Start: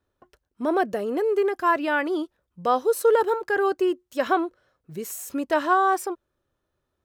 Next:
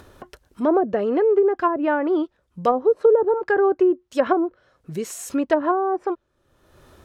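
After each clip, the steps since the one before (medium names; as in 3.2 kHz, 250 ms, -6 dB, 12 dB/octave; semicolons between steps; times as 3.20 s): low-pass that closes with the level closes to 510 Hz, closed at -17 dBFS; upward compressor, threshold -36 dBFS; trim +5.5 dB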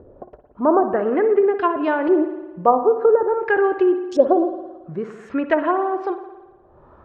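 LFO low-pass saw up 0.48 Hz 480–5500 Hz; on a send at -9 dB: reverberation RT60 1.2 s, pre-delay 55 ms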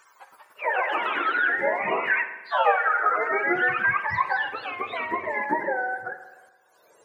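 spectrum inverted on a logarithmic axis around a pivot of 760 Hz; ever faster or slower copies 213 ms, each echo +2 st, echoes 3; trim -5 dB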